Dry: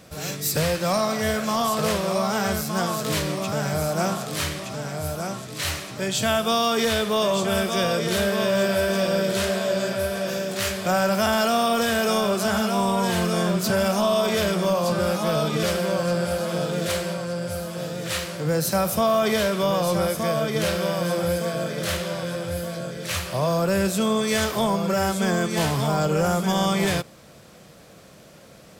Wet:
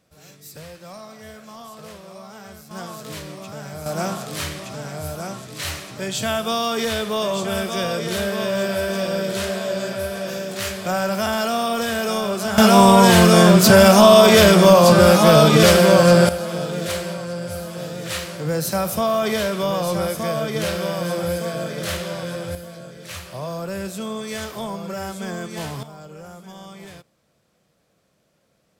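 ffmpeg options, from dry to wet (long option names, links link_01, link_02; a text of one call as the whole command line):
ffmpeg -i in.wav -af "asetnsamples=nb_out_samples=441:pad=0,asendcmd='2.71 volume volume -9dB;3.86 volume volume -1dB;12.58 volume volume 11.5dB;16.29 volume volume 0dB;22.55 volume volume -7dB;25.83 volume volume -18dB',volume=-16.5dB" out.wav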